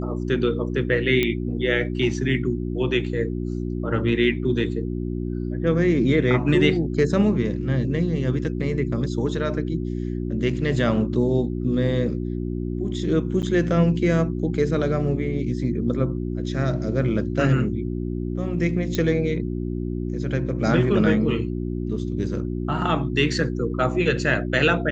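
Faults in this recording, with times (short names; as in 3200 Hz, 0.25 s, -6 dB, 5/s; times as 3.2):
hum 60 Hz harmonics 6 -27 dBFS
1.23 pop -9 dBFS
13.42–13.43 gap 8.8 ms
18.95 pop -11 dBFS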